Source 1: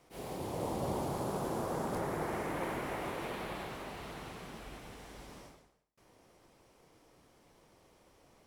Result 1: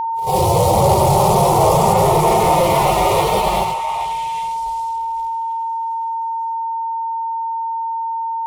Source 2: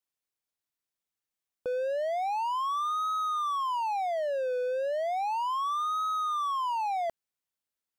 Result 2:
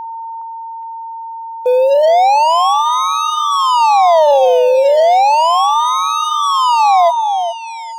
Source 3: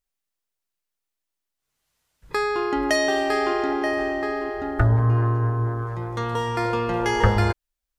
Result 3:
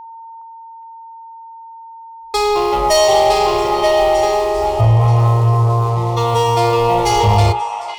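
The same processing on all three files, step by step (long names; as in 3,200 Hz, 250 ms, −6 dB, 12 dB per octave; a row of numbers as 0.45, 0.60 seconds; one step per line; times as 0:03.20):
harmonic-percussive split with one part muted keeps harmonic
mains-hum notches 60/120/180/240/300/360/420/480/540/600 Hz
noise gate −44 dBFS, range −16 dB
leveller curve on the samples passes 3
downward compressor 1.5 to 1, threshold −21 dBFS
phaser with its sweep stopped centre 660 Hz, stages 4
steady tone 910 Hz −40 dBFS
on a send: echo through a band-pass that steps 414 ms, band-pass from 1,000 Hz, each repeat 1.4 octaves, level −4.5 dB
on the sum: normalise the peak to −2 dBFS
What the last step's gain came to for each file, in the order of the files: +21.5, +17.0, +8.0 decibels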